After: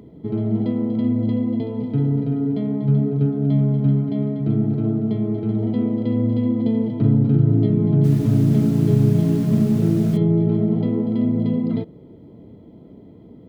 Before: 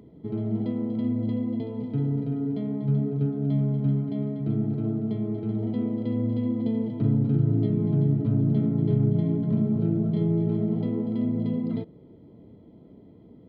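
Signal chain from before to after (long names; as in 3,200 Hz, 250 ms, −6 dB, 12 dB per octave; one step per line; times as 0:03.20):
0:08.03–0:10.16: background noise pink −49 dBFS
level +6.5 dB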